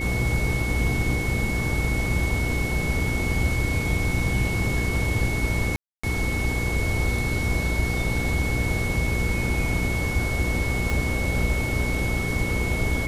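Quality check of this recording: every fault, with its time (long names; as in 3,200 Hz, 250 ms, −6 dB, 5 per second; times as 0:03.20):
mains hum 60 Hz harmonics 8 −28 dBFS
whistle 2,200 Hz −29 dBFS
0:05.76–0:06.04: drop-out 275 ms
0:10.90: click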